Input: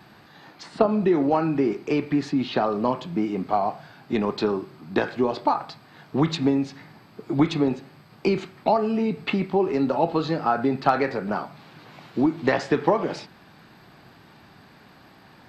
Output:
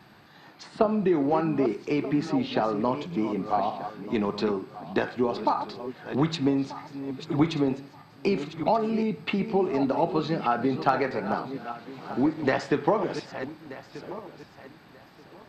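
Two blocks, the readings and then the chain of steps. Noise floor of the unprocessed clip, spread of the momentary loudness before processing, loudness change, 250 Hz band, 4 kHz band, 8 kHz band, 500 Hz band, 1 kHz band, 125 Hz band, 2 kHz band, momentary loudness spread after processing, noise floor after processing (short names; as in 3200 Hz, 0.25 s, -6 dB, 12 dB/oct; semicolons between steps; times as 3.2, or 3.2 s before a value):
-52 dBFS, 9 LU, -3.0 dB, -2.5 dB, -2.5 dB, n/a, -2.5 dB, -2.5 dB, -2.5 dB, -2.5 dB, 13 LU, -53 dBFS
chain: regenerating reverse delay 0.617 s, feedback 47%, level -10.5 dB; wow and flutter 22 cents; gain -3 dB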